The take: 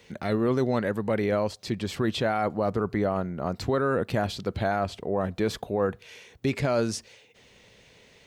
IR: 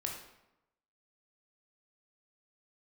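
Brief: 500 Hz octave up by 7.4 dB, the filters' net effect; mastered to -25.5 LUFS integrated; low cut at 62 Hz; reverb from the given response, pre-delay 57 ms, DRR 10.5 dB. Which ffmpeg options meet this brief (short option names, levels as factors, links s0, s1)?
-filter_complex "[0:a]highpass=62,equalizer=f=500:t=o:g=9,asplit=2[s0][s1];[1:a]atrim=start_sample=2205,adelay=57[s2];[s1][s2]afir=irnorm=-1:irlink=0,volume=0.266[s3];[s0][s3]amix=inputs=2:normalize=0,volume=0.668"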